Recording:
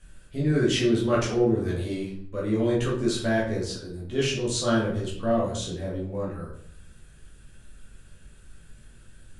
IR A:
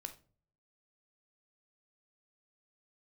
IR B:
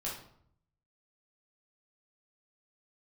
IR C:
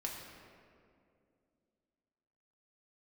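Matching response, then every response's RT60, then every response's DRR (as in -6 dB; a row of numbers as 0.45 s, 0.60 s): B; no single decay rate, 0.65 s, 2.4 s; 7.5 dB, -6.0 dB, -1.5 dB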